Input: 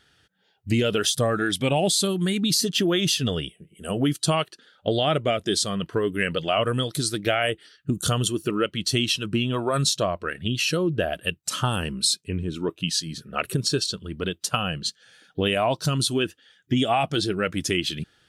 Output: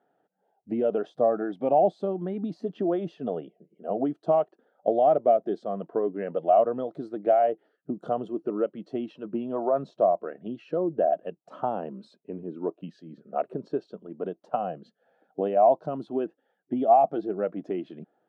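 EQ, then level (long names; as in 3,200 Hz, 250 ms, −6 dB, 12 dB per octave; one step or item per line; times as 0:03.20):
high-pass filter 200 Hz 24 dB per octave
low-pass with resonance 710 Hz, resonance Q 4.1
−5.5 dB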